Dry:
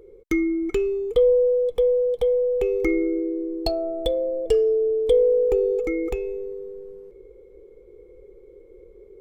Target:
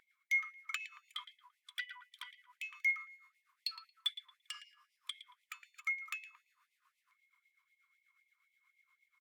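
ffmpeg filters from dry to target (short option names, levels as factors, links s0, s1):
-filter_complex "[0:a]bass=f=250:g=-6,treble=f=4000:g=-5,asettb=1/sr,asplit=3[s0][s1][s2];[s0]atrim=end=1.704[s3];[s1]atrim=start=1.7:end=2.31,asetpts=PTS-STARTPTS,afade=t=in:d=0.004:c=qsin,afade=t=out:st=0.606:d=0.004:c=qsin,aeval=exprs='0.237*(cos(1*acos(clip(val(0)/0.237,-1,1)))-cos(1*PI/2))+0.075*(cos(2*acos(clip(val(0)/0.237,-1,1)))-cos(2*PI/2))+0.0422*(cos(4*acos(clip(val(0)/0.237,-1,1)))-cos(4*PI/2))+0.00944*(cos(6*acos(clip(val(0)/0.237,-1,1)))-cos(6*PI/2))':c=same[s4];[s2]atrim=start=2.306[s5];[s3][s4]acrossfade=d=0.004:c1=hsin:c2=qsin[s6];[s6][s5]acrossfade=d=0.004:c1=qsin:c2=hsin,tremolo=f=8.3:d=0.62,asplit=2[s7][s8];[s8]adelay=113,lowpass=f=1100:p=1,volume=0.708,asplit=2[s9][s10];[s10]adelay=113,lowpass=f=1100:p=1,volume=0.5,asplit=2[s11][s12];[s12]adelay=113,lowpass=f=1100:p=1,volume=0.5,asplit=2[s13][s14];[s14]adelay=113,lowpass=f=1100:p=1,volume=0.5,asplit=2[s15][s16];[s16]adelay=113,lowpass=f=1100:p=1,volume=0.5,asplit=2[s17][s18];[s18]adelay=113,lowpass=f=1100:p=1,volume=0.5,asplit=2[s19][s20];[s20]adelay=113,lowpass=f=1100:p=1,volume=0.5[s21];[s9][s11][s13][s15][s17][s19][s21]amix=inputs=7:normalize=0[s22];[s7][s22]amix=inputs=2:normalize=0,afftfilt=real='re*gte(b*sr/1024,940*pow(2000/940,0.5+0.5*sin(2*PI*3.9*pts/sr)))':imag='im*gte(b*sr/1024,940*pow(2000/940,0.5+0.5*sin(2*PI*3.9*pts/sr)))':win_size=1024:overlap=0.75,volume=1.5"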